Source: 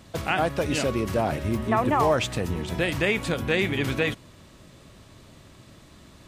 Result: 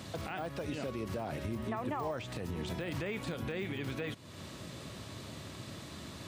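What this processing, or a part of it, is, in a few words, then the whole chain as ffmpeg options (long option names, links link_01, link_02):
broadcast voice chain: -af "highpass=frequency=73:width=0.5412,highpass=frequency=73:width=1.3066,deesser=0.95,acompressor=threshold=-42dB:ratio=3,equalizer=frequency=4200:width_type=o:width=0.77:gain=2.5,alimiter=level_in=8dB:limit=-24dB:level=0:latency=1:release=99,volume=-8dB,volume=4.5dB"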